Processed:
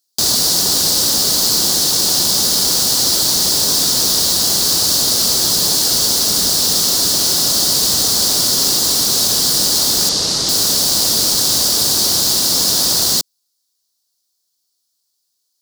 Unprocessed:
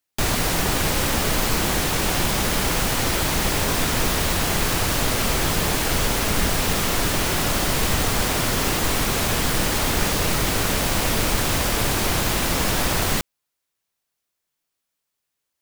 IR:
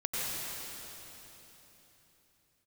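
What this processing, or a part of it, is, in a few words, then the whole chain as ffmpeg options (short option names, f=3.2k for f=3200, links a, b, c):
filter by subtraction: -filter_complex "[0:a]asettb=1/sr,asplit=3[a][b][c];[a]atrim=end=10.094[d];[b]atrim=start=10.09:end=10.49,asetpts=PTS-STARTPTS,afade=t=in:d=0.004:c=qsin,afade=t=out:st=0.396:d=0.004:c=qsin,lowpass=6.8k[e];[c]atrim=start=10.486[f];[d][e]acrossfade=d=0.004:c1=hsin:c2=qsin[g];[g][f]acrossfade=d=0.004:c1=qsin:c2=hsin,highshelf=f=3.3k:t=q:w=3:g=12,asplit=2[h][i];[i]lowpass=250,volume=-1[j];[h][j]amix=inputs=2:normalize=0,volume=-2.5dB"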